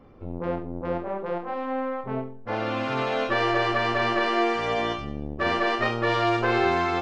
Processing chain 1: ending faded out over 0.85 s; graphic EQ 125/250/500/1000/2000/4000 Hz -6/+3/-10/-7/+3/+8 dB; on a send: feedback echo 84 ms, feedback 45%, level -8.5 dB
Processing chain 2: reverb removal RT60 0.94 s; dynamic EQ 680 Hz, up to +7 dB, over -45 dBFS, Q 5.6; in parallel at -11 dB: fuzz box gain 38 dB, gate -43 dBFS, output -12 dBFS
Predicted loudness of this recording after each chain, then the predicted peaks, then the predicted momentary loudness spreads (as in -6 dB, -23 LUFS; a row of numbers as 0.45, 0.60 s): -26.5, -21.0 LUFS; -12.5, -9.0 dBFS; 13, 7 LU